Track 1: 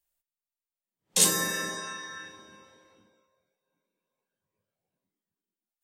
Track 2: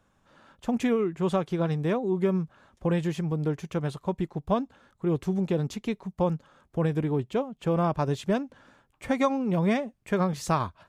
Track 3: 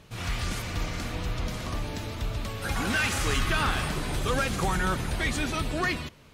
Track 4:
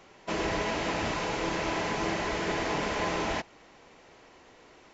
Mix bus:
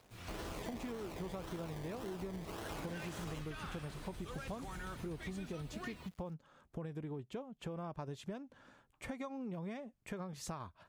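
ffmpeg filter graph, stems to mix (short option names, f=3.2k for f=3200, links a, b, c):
-filter_complex "[1:a]acompressor=threshold=-39dB:ratio=1.5,volume=-5dB[a];[2:a]acrusher=bits=7:mix=0:aa=0.000001,volume=-16.5dB[b];[3:a]acrusher=samples=26:mix=1:aa=0.000001:lfo=1:lforange=15.6:lforate=1.8,volume=-13dB[c];[a][b][c]amix=inputs=3:normalize=0,acompressor=threshold=-40dB:ratio=6"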